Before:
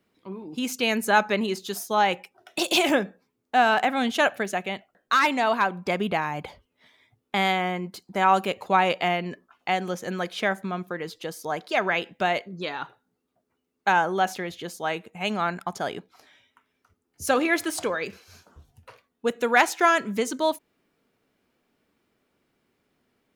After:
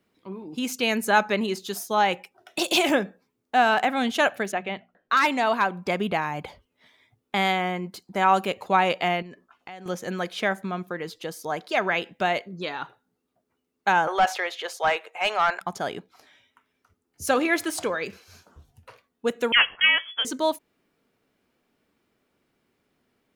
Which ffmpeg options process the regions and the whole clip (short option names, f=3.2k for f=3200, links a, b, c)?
-filter_complex "[0:a]asettb=1/sr,asplit=3[a][b][c];[a]atrim=end=4.524[d];[b]atrim=start=4.52:end=5.17,asetpts=PTS-STARTPTS,afade=t=in:d=0.004:c=qsin,afade=t=out:st=0.646:d=0.004:c=qsin,lowpass=3.4k,bandreject=f=60:t=h:w=6,bandreject=f=120:t=h:w=6,bandreject=f=180:t=h:w=6,bandreject=f=240:t=h:w=6[e];[c]atrim=start=5.166[f];[d][e]acrossfade=d=0.004:c1=hsin:c2=qsin[g];[g][f]acrossfade=d=0.004:c1=qsin:c2=hsin,asettb=1/sr,asplit=3[h][i][j];[h]atrim=end=9.224[k];[i]atrim=start=9.22:end=9.86,asetpts=PTS-STARTPTS,afade=t=in:d=0.004:c=qsin,afade=t=out:st=0.636:d=0.004:c=qsin,highshelf=f=11k:g=-4,acompressor=threshold=-40dB:ratio=4:attack=3.2:release=140:knee=1:detection=peak[l];[j]atrim=start=9.856[m];[k][l]acrossfade=d=0.004:c1=hsin:c2=qsin[n];[n][m]acrossfade=d=0.004:c1=qsin:c2=hsin,asettb=1/sr,asplit=3[o][p][q];[o]atrim=end=14.074[r];[p]atrim=start=14.07:end=15.61,asetpts=PTS-STARTPTS,afade=t=in:d=0.004:c=qsin,afade=t=out:st=1.536:d=0.004:c=qsin,highpass=f=480:w=0.5412,highpass=f=480:w=1.3066,asplit=2[s][t];[t]highpass=f=720:p=1,volume=16dB,asoftclip=type=tanh:threshold=-10.5dB[u];[s][u]amix=inputs=2:normalize=0,lowpass=f=2.6k:p=1,volume=-6dB[v];[q]atrim=start=15.606[w];[r][v]acrossfade=d=0.004:c1=hsin:c2=qsin[x];[x][w]acrossfade=d=0.004:c1=qsin:c2=hsin,asettb=1/sr,asplit=3[y][z][aa];[y]atrim=end=19.524[ab];[z]atrim=start=19.52:end=20.25,asetpts=PTS-STARTPTS,afade=t=in:d=0.004:c=qsin,afade=t=out:st=0.726:d=0.004:c=qsin,highpass=350,agate=range=-33dB:threshold=-37dB:ratio=3:release=100:detection=peak,lowpass=f=3.1k:t=q:w=0.5098,lowpass=f=3.1k:t=q:w=0.6013,lowpass=f=3.1k:t=q:w=0.9,lowpass=f=3.1k:t=q:w=2.563,afreqshift=-3600[ac];[aa]atrim=start=20.246[ad];[ab][ac]acrossfade=d=0.004:c1=hsin:c2=qsin[ae];[ae][ad]acrossfade=d=0.004:c1=qsin:c2=hsin"